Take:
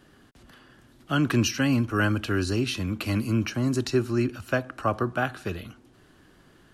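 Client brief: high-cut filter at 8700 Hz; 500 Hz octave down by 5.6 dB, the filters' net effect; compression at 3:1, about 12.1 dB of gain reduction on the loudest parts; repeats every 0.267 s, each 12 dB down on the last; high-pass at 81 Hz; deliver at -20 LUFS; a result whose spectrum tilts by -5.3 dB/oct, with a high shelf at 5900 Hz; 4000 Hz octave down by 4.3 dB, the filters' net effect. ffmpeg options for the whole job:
-af "highpass=81,lowpass=8.7k,equalizer=f=500:t=o:g=-8.5,equalizer=f=4k:t=o:g=-3,highshelf=f=5.9k:g=-8,acompressor=threshold=-37dB:ratio=3,aecho=1:1:267|534|801:0.251|0.0628|0.0157,volume=18.5dB"

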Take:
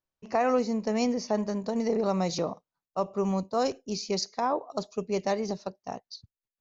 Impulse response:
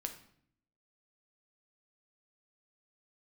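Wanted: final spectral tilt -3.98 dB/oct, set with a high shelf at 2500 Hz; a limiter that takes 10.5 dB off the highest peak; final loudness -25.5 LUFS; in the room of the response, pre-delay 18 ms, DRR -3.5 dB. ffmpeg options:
-filter_complex "[0:a]highshelf=f=2.5k:g=8,alimiter=limit=-22dB:level=0:latency=1,asplit=2[a][b];[1:a]atrim=start_sample=2205,adelay=18[c];[b][c]afir=irnorm=-1:irlink=0,volume=4.5dB[d];[a][d]amix=inputs=2:normalize=0,volume=2dB"

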